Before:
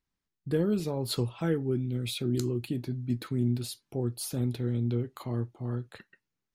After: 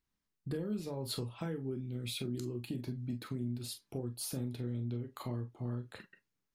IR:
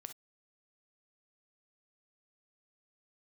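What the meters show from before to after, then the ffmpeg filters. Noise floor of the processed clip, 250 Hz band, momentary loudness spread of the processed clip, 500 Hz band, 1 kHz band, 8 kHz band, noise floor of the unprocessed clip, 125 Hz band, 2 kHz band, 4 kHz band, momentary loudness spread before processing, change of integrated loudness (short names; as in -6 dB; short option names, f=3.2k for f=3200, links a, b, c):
under -85 dBFS, -8.5 dB, 4 LU, -9.5 dB, -6.0 dB, -4.5 dB, under -85 dBFS, -8.5 dB, -6.5 dB, -5.0 dB, 6 LU, -8.0 dB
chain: -filter_complex "[0:a]acompressor=threshold=-34dB:ratio=6[a];[1:a]atrim=start_sample=2205,asetrate=61740,aresample=44100[b];[a][b]afir=irnorm=-1:irlink=0,volume=7.5dB"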